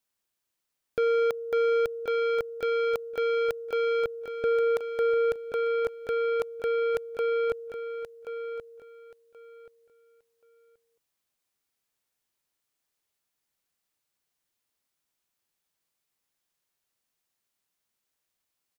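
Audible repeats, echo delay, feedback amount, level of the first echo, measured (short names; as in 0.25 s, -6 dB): 2, 1.079 s, 20%, -10.0 dB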